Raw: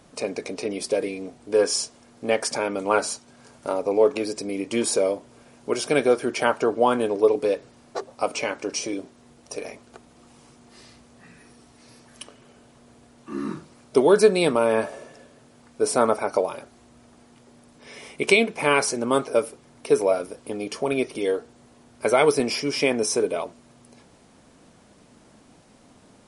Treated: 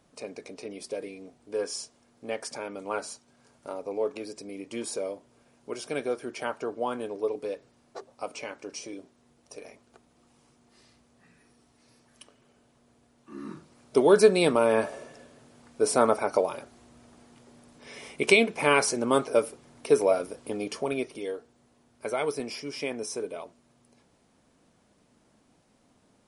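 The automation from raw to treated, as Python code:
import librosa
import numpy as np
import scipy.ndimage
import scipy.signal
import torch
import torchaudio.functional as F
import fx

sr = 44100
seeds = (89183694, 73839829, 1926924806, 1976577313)

y = fx.gain(x, sr, db=fx.line((13.36, -11.0), (14.13, -2.0), (20.62, -2.0), (21.36, -11.0)))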